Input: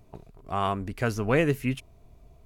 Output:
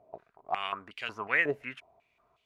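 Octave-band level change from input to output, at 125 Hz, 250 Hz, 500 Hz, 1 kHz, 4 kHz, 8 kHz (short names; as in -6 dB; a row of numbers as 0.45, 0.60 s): -22.0 dB, -15.5 dB, -9.0 dB, -4.5 dB, 0.0 dB, under -15 dB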